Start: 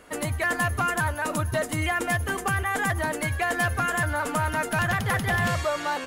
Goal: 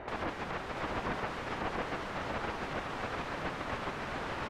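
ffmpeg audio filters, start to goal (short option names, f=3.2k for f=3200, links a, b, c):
-filter_complex "[0:a]asplit=2[a][b];[b]adelay=120,highpass=300,lowpass=3.4k,asoftclip=type=hard:threshold=-27dB,volume=-13dB[c];[a][c]amix=inputs=2:normalize=0,aeval=exprs='(mod(44.7*val(0)+1,2)-1)/44.7':c=same,asplit=2[d][e];[e]aecho=0:1:926:0.596[f];[d][f]amix=inputs=2:normalize=0,asetrate=59535,aresample=44100,lowpass=1.4k,volume=9dB"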